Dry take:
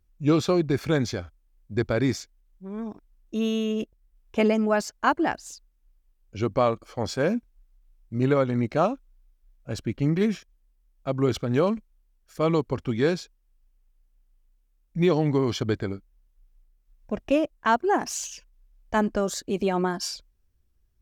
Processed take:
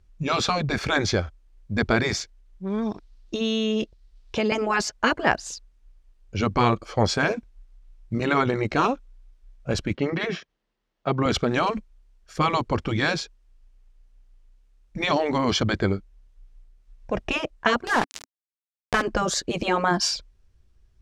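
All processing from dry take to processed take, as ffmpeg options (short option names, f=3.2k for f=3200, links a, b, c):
-filter_complex "[0:a]asettb=1/sr,asplit=3[a][b][c];[a]atrim=end=2.674[d];[b]atrim=start=2.67:end=4.52,asetpts=PTS-STARTPTS,afade=t=in:d=0.004:c=qsin,afade=t=out:st=1.846:d=0.004:c=qsin,equalizer=f=4.3k:t=o:w=1:g=10.5,acompressor=threshold=-28dB:ratio=6:attack=3.2:release=140:knee=1:detection=peak[e];[c]atrim=start=4.516[f];[d][e]acrossfade=d=0.004:c1=hsin:c2=qsin[g];[g][f]acrossfade=d=0.004:c1=qsin:c2=hsin,asettb=1/sr,asplit=3[h][i][j];[h]atrim=end=9.954[k];[i]atrim=start=9.95:end=11.26,asetpts=PTS-STARTPTS,afade=t=in:d=0.004:c=qsin,afade=t=out:st=1.306:d=0.004:c=qsin,highpass=170,lowpass=4.2k,bandreject=f=2.4k:w=20[l];[j]atrim=start=11.256[m];[k][l]acrossfade=d=0.004:c1=hsin:c2=qsin[n];[n][m]acrossfade=d=0.004:c1=qsin:c2=hsin,asettb=1/sr,asplit=3[o][p][q];[o]atrim=end=17.874[r];[p]atrim=start=17.87:end=19.02,asetpts=PTS-STARTPTS,afade=t=in:d=0.004:c=qsin,afade=t=out:st=1.146:d=0.004:c=qsin,lowpass=4.3k,aeval=exprs='val(0)*gte(abs(val(0)),0.0282)':c=same,acompressor=mode=upward:threshold=-33dB:ratio=2.5:attack=3.2:release=140:knee=2.83:detection=peak[s];[q]atrim=start=19.016[t];[r][s]acrossfade=d=0.004:c1=hsin:c2=qsin[u];[u][t]acrossfade=d=0.004:c1=qsin:c2=hsin,lowpass=6.7k,equalizer=f=270:t=o:w=0.24:g=-8,afftfilt=real='re*lt(hypot(re,im),0.316)':imag='im*lt(hypot(re,im),0.316)':win_size=1024:overlap=0.75,volume=9dB"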